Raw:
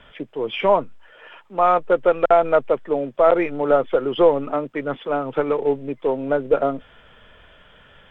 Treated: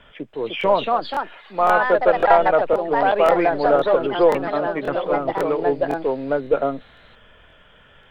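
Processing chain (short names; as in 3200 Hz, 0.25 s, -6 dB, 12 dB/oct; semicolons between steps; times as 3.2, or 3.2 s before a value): echoes that change speed 0.335 s, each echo +3 st, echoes 2; crackling interface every 0.53 s, samples 1024, repeat, from 0.59; gain -1 dB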